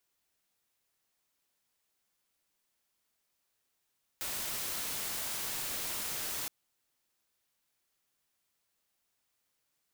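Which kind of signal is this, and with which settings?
noise white, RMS -37 dBFS 2.27 s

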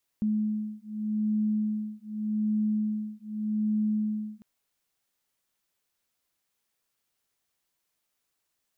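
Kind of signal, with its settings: beating tones 213 Hz, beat 0.84 Hz, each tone -29 dBFS 4.20 s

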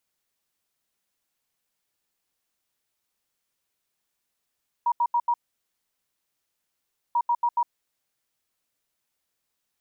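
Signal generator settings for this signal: beep pattern sine 953 Hz, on 0.06 s, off 0.08 s, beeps 4, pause 1.81 s, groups 2, -19 dBFS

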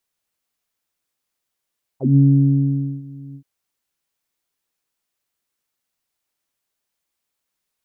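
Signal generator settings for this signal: synth note saw C#3 24 dB/oct, low-pass 240 Hz, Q 7.7, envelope 2 oct, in 0.06 s, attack 0.16 s, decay 0.86 s, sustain -24 dB, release 0.08 s, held 1.35 s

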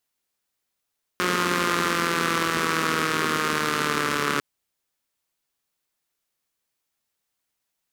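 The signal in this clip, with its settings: four-cylinder engine model, changing speed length 3.20 s, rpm 5400, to 4300, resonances 250/380/1200 Hz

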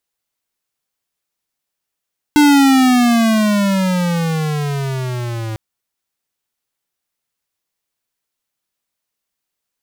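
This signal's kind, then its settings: gliding synth tone square, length 3.20 s, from 299 Hz, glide -17.5 st, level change -15 dB, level -8.5 dB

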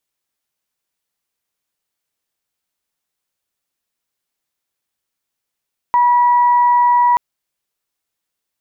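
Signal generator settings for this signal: steady additive tone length 1.23 s, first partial 970 Hz, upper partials -20 dB, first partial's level -9 dB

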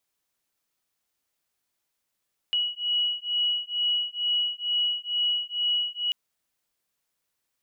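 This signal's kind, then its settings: beating tones 2920 Hz, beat 2.2 Hz, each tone -27 dBFS 3.59 s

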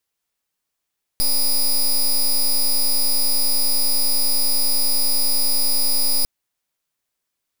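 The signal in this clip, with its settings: pulse 4930 Hz, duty 13% -17 dBFS 5.05 s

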